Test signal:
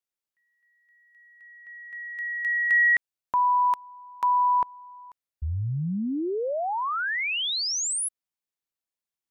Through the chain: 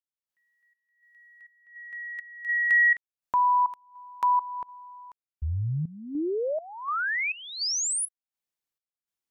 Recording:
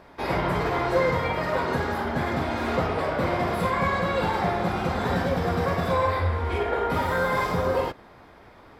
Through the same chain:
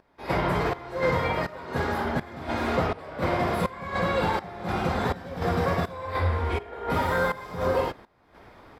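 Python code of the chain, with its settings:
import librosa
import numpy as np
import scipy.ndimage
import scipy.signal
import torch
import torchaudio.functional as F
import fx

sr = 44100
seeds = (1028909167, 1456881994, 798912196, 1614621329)

y = fx.volume_shaper(x, sr, bpm=82, per_beat=1, depth_db=-17, release_ms=293.0, shape='slow start')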